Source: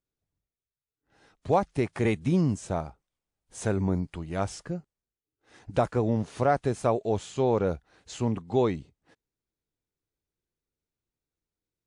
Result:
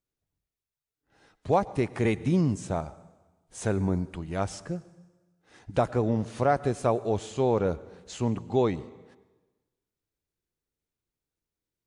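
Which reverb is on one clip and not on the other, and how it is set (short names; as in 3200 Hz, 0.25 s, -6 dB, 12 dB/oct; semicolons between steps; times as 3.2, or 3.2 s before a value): plate-style reverb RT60 1.2 s, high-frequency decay 0.95×, pre-delay 85 ms, DRR 18.5 dB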